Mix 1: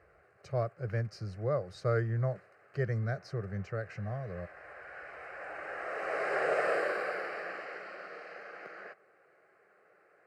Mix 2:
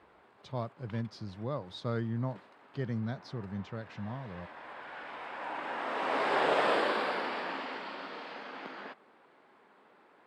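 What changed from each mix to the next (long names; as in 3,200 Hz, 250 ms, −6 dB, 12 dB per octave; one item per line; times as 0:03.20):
speech −7.0 dB
master: remove phaser with its sweep stopped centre 940 Hz, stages 6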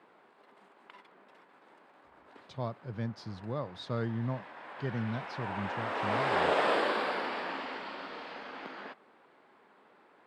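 speech: entry +2.05 s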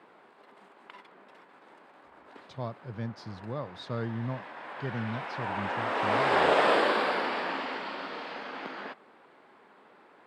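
background +4.5 dB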